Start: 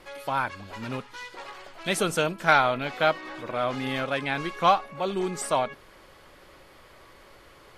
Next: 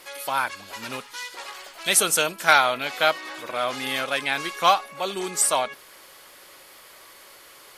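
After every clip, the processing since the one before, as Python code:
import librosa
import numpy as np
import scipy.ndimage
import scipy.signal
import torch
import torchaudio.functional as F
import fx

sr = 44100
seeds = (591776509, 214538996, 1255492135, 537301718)

y = fx.riaa(x, sr, side='recording')
y = y * librosa.db_to_amplitude(2.0)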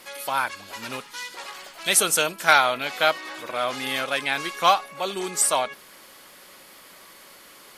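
y = fx.dmg_noise_band(x, sr, seeds[0], low_hz=160.0, high_hz=340.0, level_db=-65.0)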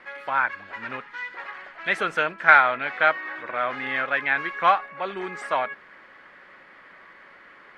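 y = fx.lowpass_res(x, sr, hz=1800.0, q=3.0)
y = y * librosa.db_to_amplitude(-3.0)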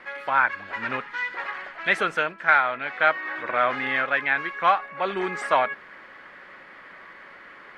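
y = fx.rider(x, sr, range_db=5, speed_s=0.5)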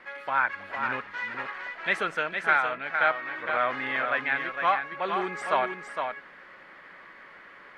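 y = x + 10.0 ** (-6.0 / 20.0) * np.pad(x, (int(460 * sr / 1000.0), 0))[:len(x)]
y = y * librosa.db_to_amplitude(-4.5)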